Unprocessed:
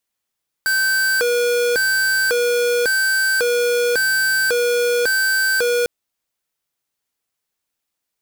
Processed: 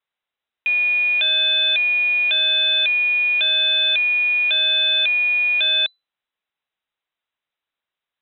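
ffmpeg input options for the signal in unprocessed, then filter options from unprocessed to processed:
-f lavfi -i "aevalsrc='0.133*(2*lt(mod((1016*t+534/0.91*(0.5-abs(mod(0.91*t,1)-0.5))),1),0.5)-1)':d=5.2:s=44100"
-af "lowpass=f=3400:t=q:w=0.5098,lowpass=f=3400:t=q:w=0.6013,lowpass=f=3400:t=q:w=0.9,lowpass=f=3400:t=q:w=2.563,afreqshift=-4000"

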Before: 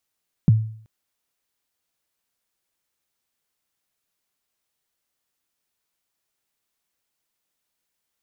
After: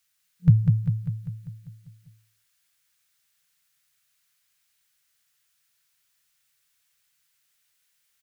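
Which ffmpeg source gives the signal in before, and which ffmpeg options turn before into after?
-f lavfi -i "aevalsrc='0.398*pow(10,-3*t/0.55)*sin(2*PI*(200*0.022/log(110/200)*(exp(log(110/200)*min(t,0.022)/0.022)-1)+110*max(t-0.022,0)))':d=0.38:s=44100"
-af "afftfilt=real='re*(1-between(b*sr/4096,180,450))':imag='im*(1-between(b*sr/4096,180,450))':win_size=4096:overlap=0.75,firequalizer=gain_entry='entry(100,0);entry(180,5);entry(590,-7);entry(960,-3);entry(1500,7)':delay=0.05:min_phase=1,aecho=1:1:198|396|594|792|990|1188|1386|1584:0.596|0.345|0.2|0.116|0.0674|0.0391|0.0227|0.0132"

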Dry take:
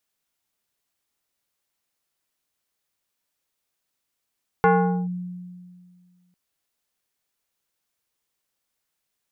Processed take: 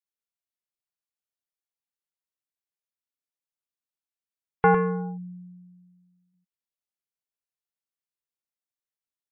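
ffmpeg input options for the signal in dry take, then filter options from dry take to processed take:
-f lavfi -i "aevalsrc='0.251*pow(10,-3*t/2.02)*sin(2*PI*179*t+1.8*clip(1-t/0.44,0,1)*sin(2*PI*3.54*179*t))':d=1.7:s=44100"
-af "afftdn=nr=20:nf=-47,aecho=1:1:104|109:0.501|0.106"

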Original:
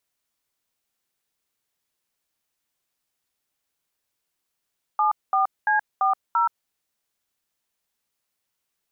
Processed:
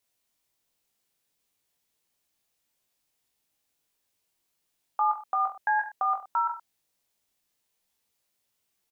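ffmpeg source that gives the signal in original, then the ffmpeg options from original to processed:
-f lavfi -i "aevalsrc='0.1*clip(min(mod(t,0.34),0.125-mod(t,0.34))/0.002,0,1)*(eq(floor(t/0.34),0)*(sin(2*PI*852*mod(t,0.34))+sin(2*PI*1209*mod(t,0.34)))+eq(floor(t/0.34),1)*(sin(2*PI*770*mod(t,0.34))+sin(2*PI*1209*mod(t,0.34)))+eq(floor(t/0.34),2)*(sin(2*PI*852*mod(t,0.34))+sin(2*PI*1633*mod(t,0.34)))+eq(floor(t/0.34),3)*(sin(2*PI*770*mod(t,0.34))+sin(2*PI*1209*mod(t,0.34)))+eq(floor(t/0.34),4)*(sin(2*PI*941*mod(t,0.34))+sin(2*PI*1336*mod(t,0.34))))':d=1.7:s=44100"
-filter_complex "[0:a]aecho=1:1:20|42|66.2|92.82|122.1:0.631|0.398|0.251|0.158|0.1,acrossover=split=970[s0][s1];[s0]acompressor=threshold=0.0224:ratio=6[s2];[s1]equalizer=f=1300:t=o:w=0.87:g=-6[s3];[s2][s3]amix=inputs=2:normalize=0"

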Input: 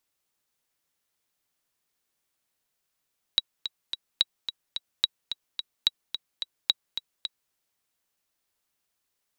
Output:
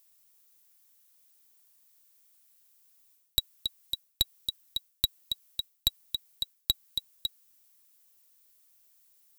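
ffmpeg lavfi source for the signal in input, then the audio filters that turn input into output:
-f lavfi -i "aevalsrc='pow(10,(-7-10*gte(mod(t,3*60/217),60/217))/20)*sin(2*PI*3870*mod(t,60/217))*exp(-6.91*mod(t,60/217)/0.03)':d=4.14:s=44100"
-af "aemphasis=mode=production:type=75kf,aeval=exprs='1.12*(cos(1*acos(clip(val(0)/1.12,-1,1)))-cos(1*PI/2))+0.282*(cos(4*acos(clip(val(0)/1.12,-1,1)))-cos(4*PI/2))+0.0891*(cos(6*acos(clip(val(0)/1.12,-1,1)))-cos(6*PI/2))+0.316*(cos(7*acos(clip(val(0)/1.12,-1,1)))-cos(7*PI/2))':c=same,areverse,acompressor=threshold=0.0631:ratio=6,areverse"

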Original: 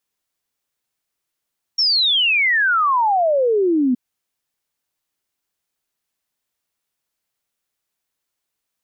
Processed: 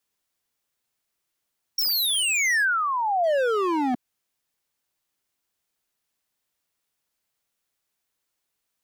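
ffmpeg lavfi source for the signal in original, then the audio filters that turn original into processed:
-f lavfi -i "aevalsrc='0.211*clip(min(t,2.17-t)/0.01,0,1)*sin(2*PI*5600*2.17/log(240/5600)*(exp(log(240/5600)*t/2.17)-1))':d=2.17:s=44100"
-filter_complex "[0:a]acrossover=split=600|1800[s0][s1][s2];[s1]acompressor=threshold=0.0316:ratio=12[s3];[s0][s3][s2]amix=inputs=3:normalize=0,aeval=exprs='0.119*(abs(mod(val(0)/0.119+3,4)-2)-1)':c=same"

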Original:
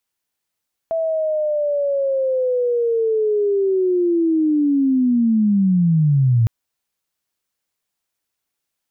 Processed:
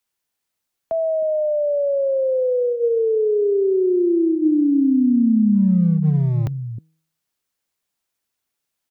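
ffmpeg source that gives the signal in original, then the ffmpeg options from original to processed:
-f lavfi -i "aevalsrc='pow(10,(-17.5+6*t/5.56)/20)*sin(2*PI*(660*t-550*t*t/(2*5.56)))':d=5.56:s=44100"
-filter_complex "[0:a]bandreject=f=159.5:t=h:w=4,bandreject=f=319:t=h:w=4,bandreject=f=478.5:t=h:w=4,acrossover=split=140|350[s0][s1][s2];[s0]asoftclip=type=hard:threshold=0.0422[s3];[s1]aecho=1:1:312:0.596[s4];[s3][s4][s2]amix=inputs=3:normalize=0"

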